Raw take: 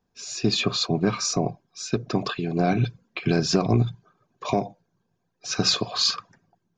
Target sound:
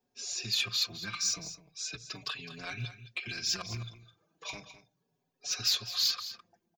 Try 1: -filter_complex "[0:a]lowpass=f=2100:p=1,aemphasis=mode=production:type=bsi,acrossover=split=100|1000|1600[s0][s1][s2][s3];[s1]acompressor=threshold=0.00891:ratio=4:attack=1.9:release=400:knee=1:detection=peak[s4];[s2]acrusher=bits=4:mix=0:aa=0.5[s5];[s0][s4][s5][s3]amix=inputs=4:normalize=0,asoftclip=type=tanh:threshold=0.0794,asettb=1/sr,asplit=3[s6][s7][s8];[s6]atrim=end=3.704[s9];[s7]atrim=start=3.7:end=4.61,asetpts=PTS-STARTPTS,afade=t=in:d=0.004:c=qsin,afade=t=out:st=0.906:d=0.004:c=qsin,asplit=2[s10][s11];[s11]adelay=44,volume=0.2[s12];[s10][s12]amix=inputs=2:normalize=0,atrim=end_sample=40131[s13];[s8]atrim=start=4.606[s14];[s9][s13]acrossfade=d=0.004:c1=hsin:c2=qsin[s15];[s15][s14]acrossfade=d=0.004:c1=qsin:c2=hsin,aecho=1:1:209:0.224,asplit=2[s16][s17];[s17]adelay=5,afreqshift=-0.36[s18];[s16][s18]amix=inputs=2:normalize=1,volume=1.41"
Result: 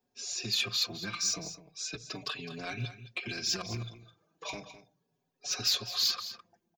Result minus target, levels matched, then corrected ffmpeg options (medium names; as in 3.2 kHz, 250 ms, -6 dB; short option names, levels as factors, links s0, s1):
compression: peak gain reduction -8 dB
-filter_complex "[0:a]lowpass=f=2100:p=1,aemphasis=mode=production:type=bsi,acrossover=split=100|1000|1600[s0][s1][s2][s3];[s1]acompressor=threshold=0.00266:ratio=4:attack=1.9:release=400:knee=1:detection=peak[s4];[s2]acrusher=bits=4:mix=0:aa=0.5[s5];[s0][s4][s5][s3]amix=inputs=4:normalize=0,asoftclip=type=tanh:threshold=0.0794,asettb=1/sr,asplit=3[s6][s7][s8];[s6]atrim=end=3.704[s9];[s7]atrim=start=3.7:end=4.61,asetpts=PTS-STARTPTS,afade=t=in:d=0.004:c=qsin,afade=t=out:st=0.906:d=0.004:c=qsin,asplit=2[s10][s11];[s11]adelay=44,volume=0.2[s12];[s10][s12]amix=inputs=2:normalize=0,atrim=end_sample=40131[s13];[s8]atrim=start=4.606[s14];[s9][s13]acrossfade=d=0.004:c1=hsin:c2=qsin[s15];[s15][s14]acrossfade=d=0.004:c1=qsin:c2=hsin,aecho=1:1:209:0.224,asplit=2[s16][s17];[s17]adelay=5,afreqshift=-0.36[s18];[s16][s18]amix=inputs=2:normalize=1,volume=1.41"